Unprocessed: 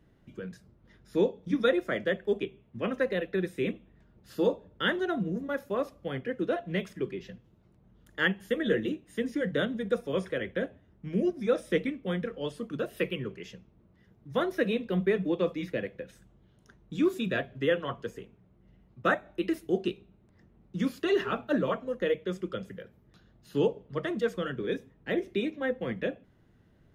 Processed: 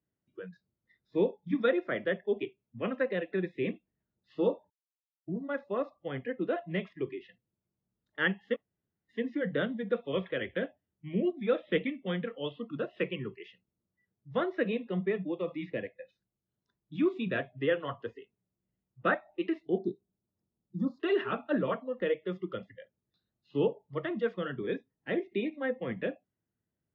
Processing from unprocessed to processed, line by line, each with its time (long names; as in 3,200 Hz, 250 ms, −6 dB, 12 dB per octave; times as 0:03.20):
0:04.70–0:05.28: silence
0:08.56–0:09.09: fill with room tone
0:09.94–0:12.62: high shelf with overshoot 4,400 Hz −8.5 dB, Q 3
0:14.48–0:16.94: shaped tremolo saw down 1 Hz, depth 40%
0:19.78–0:21.00: Butterworth band-reject 2,500 Hz, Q 0.62
whole clip: low-pass filter 3,300 Hz 24 dB per octave; noise reduction from a noise print of the clip's start 22 dB; high-pass filter 74 Hz; level −2 dB